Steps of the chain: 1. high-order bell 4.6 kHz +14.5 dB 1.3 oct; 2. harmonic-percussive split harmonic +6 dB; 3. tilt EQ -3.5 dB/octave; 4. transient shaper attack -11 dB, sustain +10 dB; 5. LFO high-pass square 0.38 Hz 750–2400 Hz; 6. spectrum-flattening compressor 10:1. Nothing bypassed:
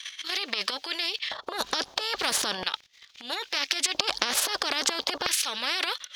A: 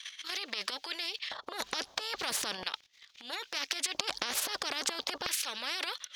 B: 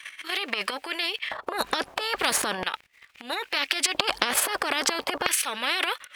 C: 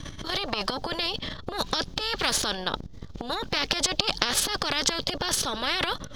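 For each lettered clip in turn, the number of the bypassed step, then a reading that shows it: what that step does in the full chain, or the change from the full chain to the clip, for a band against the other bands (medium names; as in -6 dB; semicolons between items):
2, loudness change -7.0 LU; 1, 4 kHz band -5.0 dB; 5, 125 Hz band +14.5 dB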